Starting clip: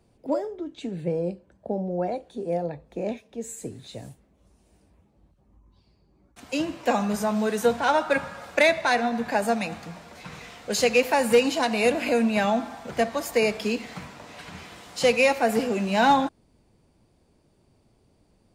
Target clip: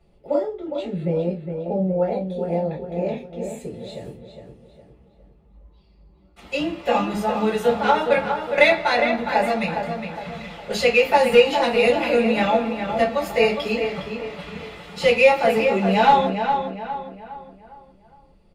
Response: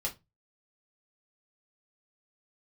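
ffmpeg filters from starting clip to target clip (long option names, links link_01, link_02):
-filter_complex "[0:a]highshelf=frequency=4600:width_type=q:width=1.5:gain=-6,asplit=2[link_01][link_02];[link_02]adelay=410,lowpass=frequency=3100:poles=1,volume=-6.5dB,asplit=2[link_03][link_04];[link_04]adelay=410,lowpass=frequency=3100:poles=1,volume=0.42,asplit=2[link_05][link_06];[link_06]adelay=410,lowpass=frequency=3100:poles=1,volume=0.42,asplit=2[link_07][link_08];[link_08]adelay=410,lowpass=frequency=3100:poles=1,volume=0.42,asplit=2[link_09][link_10];[link_10]adelay=410,lowpass=frequency=3100:poles=1,volume=0.42[link_11];[link_01][link_03][link_05][link_07][link_09][link_11]amix=inputs=6:normalize=0[link_12];[1:a]atrim=start_sample=2205[link_13];[link_12][link_13]afir=irnorm=-1:irlink=0"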